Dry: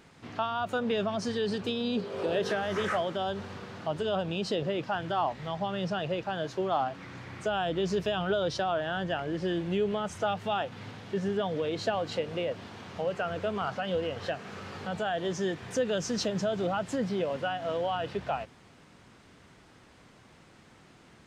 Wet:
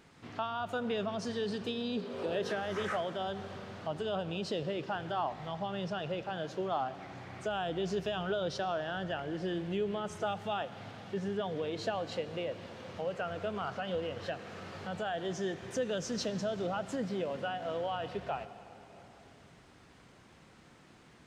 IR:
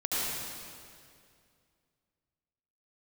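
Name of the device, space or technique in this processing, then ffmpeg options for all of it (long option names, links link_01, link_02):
ducked reverb: -filter_complex "[0:a]asplit=3[link_01][link_02][link_03];[1:a]atrim=start_sample=2205[link_04];[link_02][link_04]afir=irnorm=-1:irlink=0[link_05];[link_03]apad=whole_len=937623[link_06];[link_05][link_06]sidechaincompress=threshold=-36dB:ratio=8:attack=16:release=1120,volume=-11.5dB[link_07];[link_01][link_07]amix=inputs=2:normalize=0,volume=-5.5dB"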